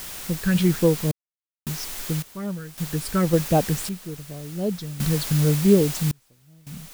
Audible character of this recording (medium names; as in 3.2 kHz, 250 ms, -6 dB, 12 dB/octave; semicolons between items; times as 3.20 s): phasing stages 6, 3.7 Hz, lowest notch 730–1800 Hz; a quantiser's noise floor 6-bit, dither triangular; random-step tremolo 1.8 Hz, depth 100%